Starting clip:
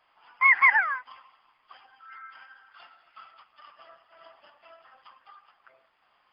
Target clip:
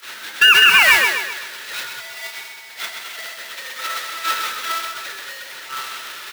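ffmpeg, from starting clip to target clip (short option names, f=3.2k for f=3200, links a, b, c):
-filter_complex "[0:a]aeval=exprs='val(0)+0.5*0.0376*sgn(val(0))':c=same,equalizer=f=250:t=o:w=0.67:g=11,equalizer=f=630:t=o:w=0.67:g=7,equalizer=f=1.6k:t=o:w=0.67:g=-4,aeval=exprs='val(0)*sin(2*PI*660*n/s)':c=same,acrossover=split=190|4100[a][b][c];[a]acompressor=threshold=-44dB:ratio=4[d];[b]acompressor=threshold=-28dB:ratio=4[e];[c]acompressor=threshold=-60dB:ratio=4[f];[d][e][f]amix=inputs=3:normalize=0,aderivative,agate=range=-35dB:threshold=-46dB:ratio=16:detection=peak,aecho=1:1:129|258|387|516|645|774:0.501|0.231|0.106|0.0488|0.0224|0.0103,acrossover=split=670[g][h];[g]aeval=exprs='(mod(944*val(0)+1,2)-1)/944':c=same[i];[i][h]amix=inputs=2:normalize=0,alimiter=level_in=35.5dB:limit=-1dB:release=50:level=0:latency=1,volume=-1dB"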